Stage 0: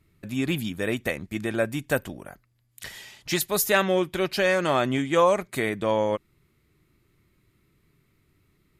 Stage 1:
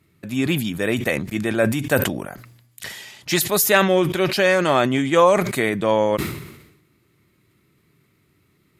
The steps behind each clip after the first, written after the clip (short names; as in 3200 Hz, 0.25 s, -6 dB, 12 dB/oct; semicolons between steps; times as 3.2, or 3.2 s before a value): HPF 100 Hz 12 dB/oct; sustainer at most 61 dB/s; gain +5 dB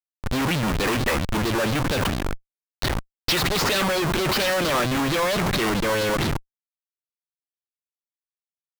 low-pass sweep 2000 Hz -> 4400 Hz, 0.54–1.47; Schmitt trigger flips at -25.5 dBFS; LFO bell 4.4 Hz 980–4300 Hz +8 dB; gain -2 dB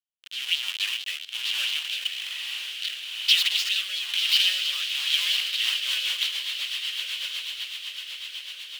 resonant high-pass 3000 Hz, resonance Q 5.9; diffused feedback echo 1.195 s, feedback 52%, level -4 dB; rotary speaker horn 1.1 Hz, later 8 Hz, at 5.33; gain -4 dB